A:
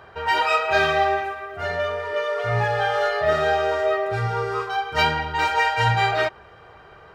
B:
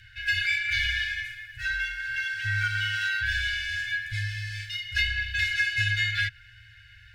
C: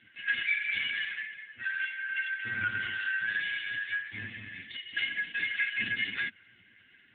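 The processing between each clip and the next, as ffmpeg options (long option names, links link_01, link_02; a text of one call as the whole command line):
ffmpeg -i in.wav -filter_complex "[0:a]afreqshift=-220,afftfilt=real='re*(1-between(b*sr/4096,120,1400))':imag='im*(1-between(b*sr/4096,120,1400))':win_size=4096:overlap=0.75,acrossover=split=570|2200|4800[link_01][link_02][link_03][link_04];[link_01]acompressor=threshold=-36dB:ratio=4[link_05];[link_02]acompressor=threshold=-31dB:ratio=4[link_06];[link_03]acompressor=threshold=-35dB:ratio=4[link_07];[link_04]acompressor=threshold=-49dB:ratio=4[link_08];[link_05][link_06][link_07][link_08]amix=inputs=4:normalize=0,volume=4dB" out.wav
ffmpeg -i in.wav -af "volume=-1dB" -ar 8000 -c:a libopencore_amrnb -b:a 5150 out.amr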